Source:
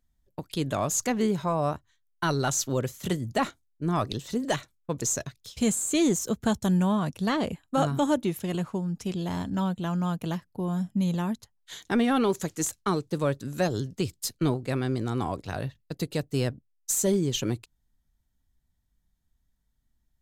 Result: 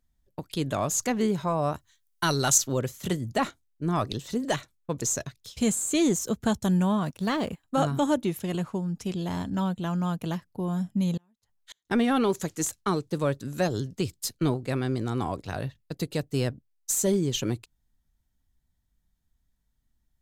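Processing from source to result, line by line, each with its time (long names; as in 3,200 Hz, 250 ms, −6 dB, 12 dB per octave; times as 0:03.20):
0:01.74–0:02.58: high-shelf EQ 3,400 Hz +11.5 dB
0:07.03–0:07.64: mu-law and A-law mismatch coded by A
0:11.17–0:11.91: gate with flip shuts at −32 dBFS, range −38 dB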